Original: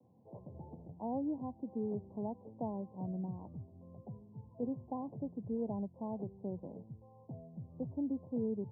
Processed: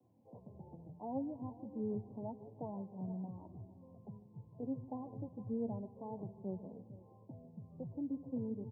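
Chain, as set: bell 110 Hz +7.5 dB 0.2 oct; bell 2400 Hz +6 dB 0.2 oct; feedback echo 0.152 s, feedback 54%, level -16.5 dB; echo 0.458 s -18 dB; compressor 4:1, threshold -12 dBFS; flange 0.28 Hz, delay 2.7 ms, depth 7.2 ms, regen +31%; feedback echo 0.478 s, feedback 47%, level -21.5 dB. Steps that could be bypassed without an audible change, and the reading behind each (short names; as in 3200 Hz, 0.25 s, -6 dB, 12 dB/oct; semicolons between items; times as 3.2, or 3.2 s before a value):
bell 2400 Hz: input band ends at 1100 Hz; compressor, threshold -12 dBFS: input peak -26.0 dBFS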